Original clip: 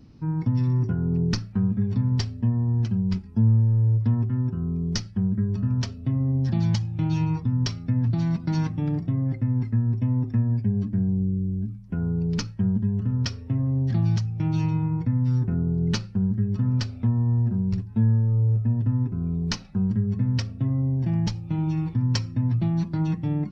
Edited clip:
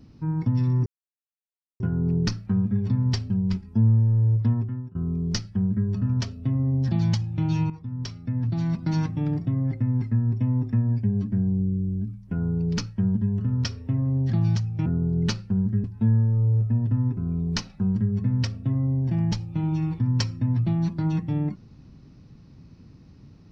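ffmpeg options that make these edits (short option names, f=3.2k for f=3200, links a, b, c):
-filter_complex "[0:a]asplit=7[a][b][c][d][e][f][g];[a]atrim=end=0.86,asetpts=PTS-STARTPTS,afade=t=out:st=0.856:d=0.004:c=hsin,apad=pad_dur=0.94[h];[b]atrim=start=0.86:end=2.362,asetpts=PTS-STARTPTS,afade=t=in:d=0.004:c=hsin[i];[c]atrim=start=2.908:end=4.56,asetpts=PTS-STARTPTS,afade=t=out:st=1.202:d=0.45:silence=0.0707946[j];[d]atrim=start=4.56:end=7.31,asetpts=PTS-STARTPTS,afade=t=in:d=0.004:c=hsin:silence=0.0707946,afade=t=out:st=2.746:d=0.004:c=hsin:silence=0.211349[k];[e]atrim=start=7.31:end=14.472,asetpts=PTS-STARTPTS,afade=t=in:d=1.16:silence=0.211349[l];[f]atrim=start=15.508:end=16.492[m];[g]atrim=start=17.788[n];[h][i]concat=n=2:v=0:a=1[o];[j][k][l]concat=n=3:v=0:a=1[p];[o][p]acrossfade=d=0.004:c1=hsin:c2=hsin[q];[q][m]acrossfade=d=0.004:c1=hsin:c2=hsin[r];[r][n]acrossfade=d=0.004:c1=hsin:c2=hsin"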